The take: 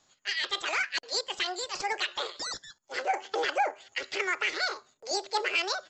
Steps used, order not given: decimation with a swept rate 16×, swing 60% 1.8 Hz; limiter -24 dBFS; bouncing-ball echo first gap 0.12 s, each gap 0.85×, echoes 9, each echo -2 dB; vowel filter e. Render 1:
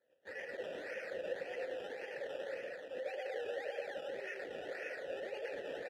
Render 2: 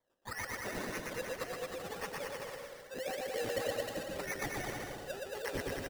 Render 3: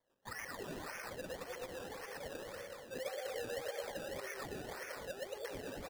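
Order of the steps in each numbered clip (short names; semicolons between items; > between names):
bouncing-ball echo > decimation with a swept rate > limiter > vowel filter; vowel filter > decimation with a swept rate > bouncing-ball echo > limiter; bouncing-ball echo > limiter > vowel filter > decimation with a swept rate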